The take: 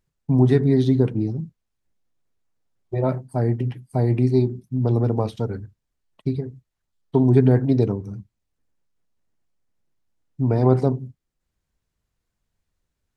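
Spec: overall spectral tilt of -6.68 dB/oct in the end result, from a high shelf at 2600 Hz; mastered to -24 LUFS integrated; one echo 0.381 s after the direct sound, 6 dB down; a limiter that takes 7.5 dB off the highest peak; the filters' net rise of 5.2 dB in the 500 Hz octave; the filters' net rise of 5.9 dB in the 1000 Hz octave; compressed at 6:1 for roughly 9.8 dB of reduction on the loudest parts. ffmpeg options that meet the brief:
-af "equalizer=f=500:t=o:g=6,equalizer=f=1k:t=o:g=6.5,highshelf=f=2.6k:g=-8.5,acompressor=threshold=-19dB:ratio=6,alimiter=limit=-15.5dB:level=0:latency=1,aecho=1:1:381:0.501,volume=3dB"

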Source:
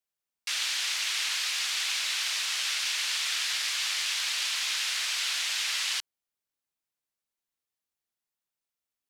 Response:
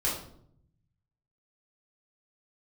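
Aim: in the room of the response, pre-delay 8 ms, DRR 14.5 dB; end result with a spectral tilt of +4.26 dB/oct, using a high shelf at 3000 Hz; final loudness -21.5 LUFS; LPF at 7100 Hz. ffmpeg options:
-filter_complex "[0:a]lowpass=7.1k,highshelf=f=3k:g=-6,asplit=2[a][b];[1:a]atrim=start_sample=2205,adelay=8[c];[b][c]afir=irnorm=-1:irlink=0,volume=-22.5dB[d];[a][d]amix=inputs=2:normalize=0,volume=10dB"

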